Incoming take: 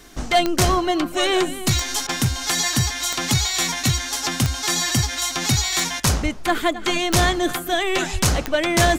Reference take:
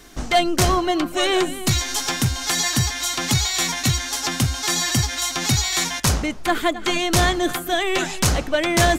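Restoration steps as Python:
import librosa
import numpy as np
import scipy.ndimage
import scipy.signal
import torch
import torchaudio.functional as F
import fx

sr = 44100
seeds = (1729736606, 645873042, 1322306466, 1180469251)

y = fx.fix_declick_ar(x, sr, threshold=10.0)
y = fx.fix_deplosive(y, sr, at_s=(6.22, 8.12))
y = fx.fix_interpolate(y, sr, at_s=(2.07,), length_ms=20.0)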